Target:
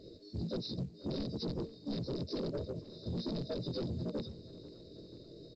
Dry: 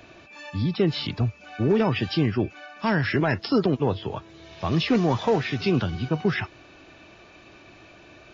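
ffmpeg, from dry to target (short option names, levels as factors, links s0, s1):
-filter_complex "[0:a]afftfilt=real='re':imag='-im':win_size=2048:overlap=0.75,aeval=exprs='(mod(8.41*val(0)+1,2)-1)/8.41':c=same,afftfilt=real='re*(1-between(b*sr/4096,510,3600))':imag='im*(1-between(b*sr/4096,510,3600))':win_size=4096:overlap=0.75,equalizer=f=1800:w=1.4:g=14,acompressor=threshold=0.0112:ratio=3,asplit=2[s0][s1];[s1]asetrate=58866,aresample=44100,atempo=0.749154,volume=0.891[s2];[s0][s2]amix=inputs=2:normalize=0,bandreject=f=226.4:t=h:w=4,bandreject=f=452.8:t=h:w=4,atempo=1.5,asoftclip=type=tanh:threshold=0.0251,asplit=2[s3][s4];[s4]aecho=0:1:486|972|1458|1944|2430:0.112|0.0651|0.0377|0.0219|0.0127[s5];[s3][s5]amix=inputs=2:normalize=0,aresample=11025,aresample=44100,volume=1.19" -ar 16000 -c:a pcm_mulaw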